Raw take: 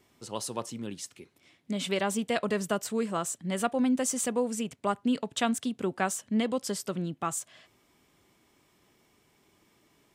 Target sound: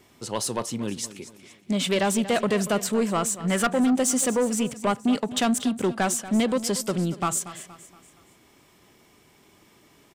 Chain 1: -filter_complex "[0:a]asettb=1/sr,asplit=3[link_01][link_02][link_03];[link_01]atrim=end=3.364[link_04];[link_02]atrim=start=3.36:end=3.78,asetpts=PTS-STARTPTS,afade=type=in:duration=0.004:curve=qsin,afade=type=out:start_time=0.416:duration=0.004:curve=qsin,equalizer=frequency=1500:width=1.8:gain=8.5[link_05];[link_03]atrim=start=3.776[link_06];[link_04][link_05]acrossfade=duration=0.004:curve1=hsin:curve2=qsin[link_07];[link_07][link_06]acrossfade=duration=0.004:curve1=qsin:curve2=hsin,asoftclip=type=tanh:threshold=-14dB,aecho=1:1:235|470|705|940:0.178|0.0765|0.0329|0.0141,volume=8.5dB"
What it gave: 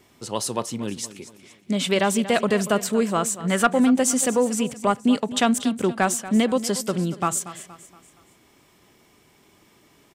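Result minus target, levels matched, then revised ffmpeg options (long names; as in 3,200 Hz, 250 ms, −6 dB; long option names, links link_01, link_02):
soft clipping: distortion −13 dB
-filter_complex "[0:a]asettb=1/sr,asplit=3[link_01][link_02][link_03];[link_01]atrim=end=3.364[link_04];[link_02]atrim=start=3.36:end=3.78,asetpts=PTS-STARTPTS,afade=type=in:duration=0.004:curve=qsin,afade=type=out:start_time=0.416:duration=0.004:curve=qsin,equalizer=frequency=1500:width=1.8:gain=8.5[link_05];[link_03]atrim=start=3.776[link_06];[link_04][link_05]acrossfade=duration=0.004:curve1=hsin:curve2=qsin[link_07];[link_07][link_06]acrossfade=duration=0.004:curve1=qsin:curve2=hsin,asoftclip=type=tanh:threshold=-25dB,aecho=1:1:235|470|705|940:0.178|0.0765|0.0329|0.0141,volume=8.5dB"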